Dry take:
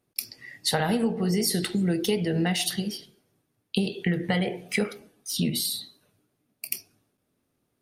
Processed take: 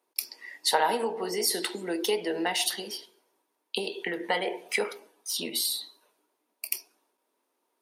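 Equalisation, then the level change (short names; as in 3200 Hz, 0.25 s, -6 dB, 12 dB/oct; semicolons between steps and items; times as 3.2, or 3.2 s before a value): HPF 340 Hz 24 dB/oct; bell 950 Hz +14 dB 0.24 oct; 0.0 dB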